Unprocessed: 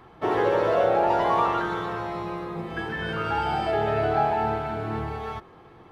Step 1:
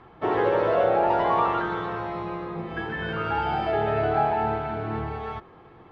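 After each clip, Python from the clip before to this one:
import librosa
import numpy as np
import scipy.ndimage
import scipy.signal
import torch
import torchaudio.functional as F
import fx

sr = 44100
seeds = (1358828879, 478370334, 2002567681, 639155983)

y = scipy.signal.sosfilt(scipy.signal.butter(2, 3500.0, 'lowpass', fs=sr, output='sos'), x)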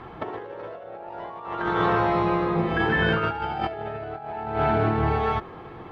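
y = fx.over_compress(x, sr, threshold_db=-30.0, ratio=-0.5)
y = F.gain(torch.from_numpy(y), 4.5).numpy()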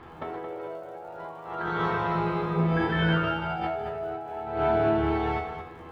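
y = fx.dmg_crackle(x, sr, seeds[0], per_s=110.0, level_db=-48.0)
y = fx.comb_fb(y, sr, f0_hz=82.0, decay_s=0.48, harmonics='all', damping=0.0, mix_pct=90)
y = y + 10.0 ** (-8.5 / 20.0) * np.pad(y, (int(222 * sr / 1000.0), 0))[:len(y)]
y = F.gain(torch.from_numpy(y), 6.0).numpy()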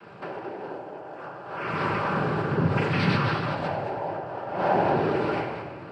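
y = fx.noise_vocoder(x, sr, seeds[1], bands=8)
y = fx.room_shoebox(y, sr, seeds[2], volume_m3=2700.0, walls='mixed', distance_m=1.2)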